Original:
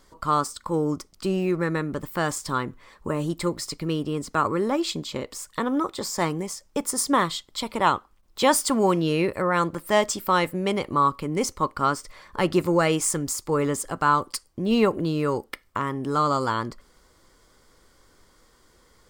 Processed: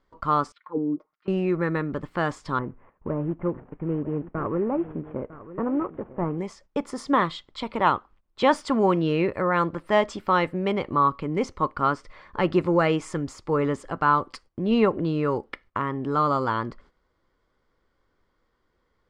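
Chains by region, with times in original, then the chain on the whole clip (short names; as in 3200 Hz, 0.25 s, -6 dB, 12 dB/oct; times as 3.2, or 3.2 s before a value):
0.52–1.28 comb 6.5 ms, depth 69% + auto-wah 260–2700 Hz, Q 3.7, down, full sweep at -16 dBFS + air absorption 77 m
2.59–6.38 CVSD 16 kbps + LPF 1000 Hz + echo 0.951 s -15.5 dB
whole clip: LPF 2800 Hz 12 dB/oct; gate -51 dBFS, range -12 dB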